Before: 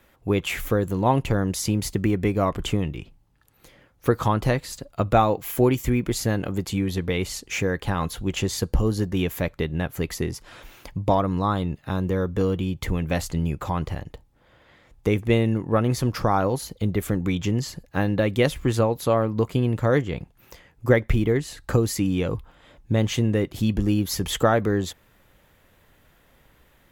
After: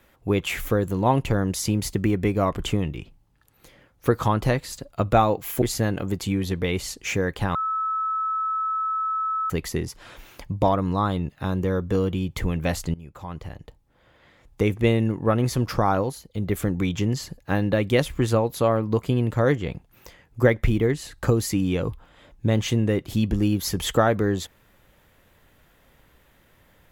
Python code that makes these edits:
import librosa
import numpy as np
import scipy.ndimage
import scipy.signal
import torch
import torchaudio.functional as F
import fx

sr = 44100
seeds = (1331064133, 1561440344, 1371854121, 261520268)

y = fx.edit(x, sr, fx.cut(start_s=5.62, length_s=0.46),
    fx.bleep(start_s=8.01, length_s=1.95, hz=1300.0, db=-22.5),
    fx.fade_in_from(start_s=13.4, length_s=1.95, curve='qsin', floor_db=-20.5),
    fx.fade_down_up(start_s=16.44, length_s=0.54, db=-9.5, fade_s=0.24), tone=tone)